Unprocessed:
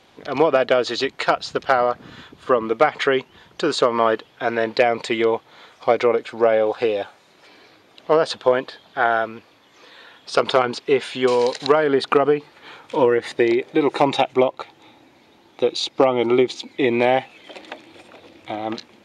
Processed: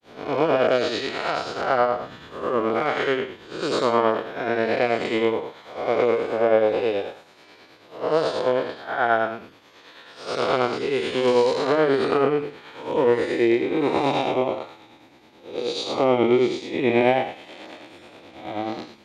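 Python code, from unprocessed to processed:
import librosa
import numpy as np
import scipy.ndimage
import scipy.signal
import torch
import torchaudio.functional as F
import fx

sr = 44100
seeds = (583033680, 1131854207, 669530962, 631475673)

y = fx.spec_blur(x, sr, span_ms=214.0)
y = fx.granulator(y, sr, seeds[0], grain_ms=195.0, per_s=9.3, spray_ms=10.0, spread_st=0)
y = y * librosa.db_to_amplitude(3.5)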